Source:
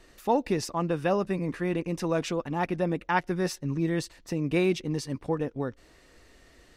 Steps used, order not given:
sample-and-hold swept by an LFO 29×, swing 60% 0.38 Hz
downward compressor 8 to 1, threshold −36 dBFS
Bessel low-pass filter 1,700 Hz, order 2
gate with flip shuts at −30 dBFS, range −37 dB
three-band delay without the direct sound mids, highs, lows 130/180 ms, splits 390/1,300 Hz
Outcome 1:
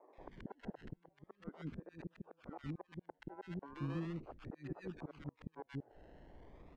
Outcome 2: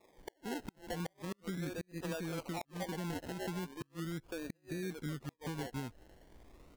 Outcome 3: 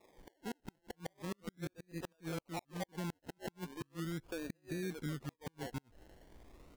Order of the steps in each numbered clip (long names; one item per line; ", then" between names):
downward compressor, then sample-and-hold swept by an LFO, then Bessel low-pass filter, then gate with flip, then three-band delay without the direct sound
three-band delay without the direct sound, then downward compressor, then Bessel low-pass filter, then sample-and-hold swept by an LFO, then gate with flip
three-band delay without the direct sound, then downward compressor, then Bessel low-pass filter, then gate with flip, then sample-and-hold swept by an LFO